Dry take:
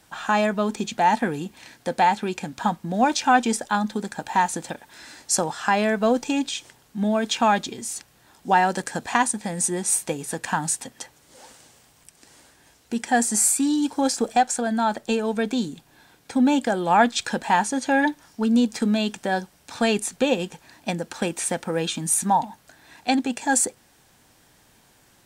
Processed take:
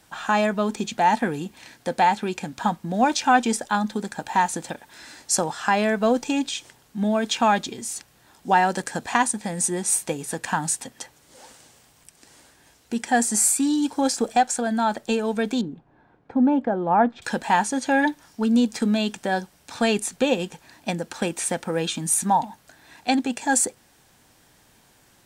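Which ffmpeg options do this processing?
ffmpeg -i in.wav -filter_complex "[0:a]asettb=1/sr,asplit=3[link_01][link_02][link_03];[link_01]atrim=end=15.614[link_04];[link_02]atrim=start=15.61:end=17.22,asetpts=PTS-STARTPTS,afade=type=in:duration=0.004:curve=qsin,afade=type=out:start_time=1.606:duration=0.004:curve=qsin,lowpass=1100[link_05];[link_03]atrim=start=17.216[link_06];[link_04][link_05]acrossfade=duration=0.004:curve1=hsin:curve2=qsin[link_07];[link_07][link_06]acrossfade=duration=0.004:curve1=qsin:curve2=hsin" out.wav

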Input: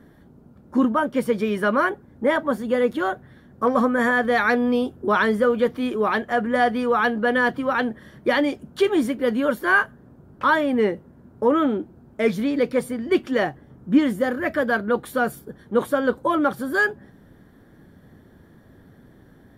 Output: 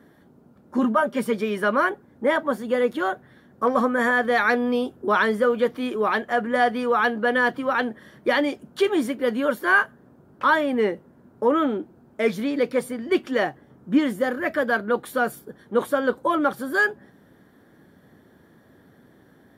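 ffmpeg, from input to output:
ffmpeg -i in.wav -filter_complex "[0:a]asettb=1/sr,asplit=3[link_01][link_02][link_03];[link_01]atrim=end=0.784[link_04];[link_02]atrim=start=0.78:end=1.35,asetpts=PTS-STARTPTS,afade=type=in:duration=0.004:curve=qsin,afade=type=out:start_time=0.566:duration=0.004:curve=qsin,aecho=1:1:5:0.65,atrim=end_sample=25137[link_05];[link_03]atrim=start=1.346[link_06];[link_04][link_05]acrossfade=duration=0.004:curve1=hsin:curve2=qsin[link_07];[link_07][link_06]acrossfade=duration=0.004:curve1=qsin:curve2=hsin,highpass=frequency=250:poles=1" out.wav

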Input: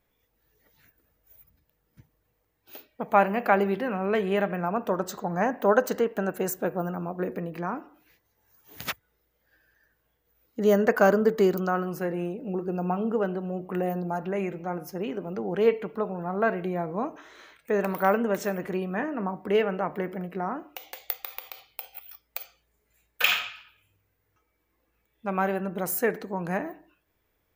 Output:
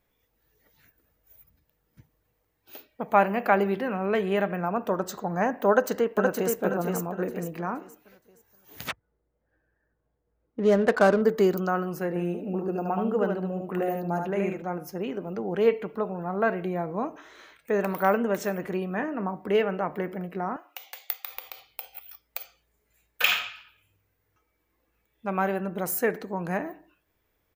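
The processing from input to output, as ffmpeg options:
ffmpeg -i in.wav -filter_complex "[0:a]asplit=2[link_01][link_02];[link_02]afade=type=in:start_time=5.7:duration=0.01,afade=type=out:start_time=6.59:duration=0.01,aecho=0:1:470|940|1410|1880|2350:0.668344|0.23392|0.0818721|0.0286552|0.0100293[link_03];[link_01][link_03]amix=inputs=2:normalize=0,asettb=1/sr,asplit=3[link_04][link_05][link_06];[link_04]atrim=end=8.884[link_07];[link_05]atrim=start=8.88:end=11.22,asetpts=PTS-STARTPTS,afade=type=in:duration=0.004:curve=qsin,afade=type=out:start_time=2.336:duration=0.004:curve=qsin,adynamicsmooth=sensitivity=4.5:basefreq=1000[link_08];[link_06]atrim=start=11.216[link_09];[link_07][link_08]acrossfade=duration=0.004:curve1=hsin:curve2=qsin[link_10];[link_10][link_09]acrossfade=duration=0.004:curve1=qsin:curve2=hsin,asettb=1/sr,asplit=3[link_11][link_12][link_13];[link_11]atrim=end=12.084[link_14];[link_12]atrim=start=12.08:end=14.62,asetpts=PTS-STARTPTS,afade=type=in:duration=0.004:curve=qsin,afade=type=out:start_time=2.536:duration=0.004:curve=qsin,aecho=1:1:75:0.631,atrim=end_sample=112014[link_15];[link_13]atrim=start=14.616[link_16];[link_14][link_15]acrossfade=duration=0.004:curve1=hsin:curve2=qsin[link_17];[link_17][link_16]acrossfade=duration=0.004:curve1=qsin:curve2=hsin,asettb=1/sr,asplit=3[link_18][link_19][link_20];[link_18]atrim=end=20.564[link_21];[link_19]atrim=start=20.56:end=21.29,asetpts=PTS-STARTPTS,afade=type=in:duration=0.004:curve=qsin,afade=type=out:start_time=0.726:duration=0.004:curve=qsin,highpass=800[link_22];[link_20]atrim=start=21.286[link_23];[link_21][link_22]acrossfade=duration=0.004:curve1=hsin:curve2=qsin[link_24];[link_24][link_23]acrossfade=duration=0.004:curve1=qsin:curve2=hsin" out.wav

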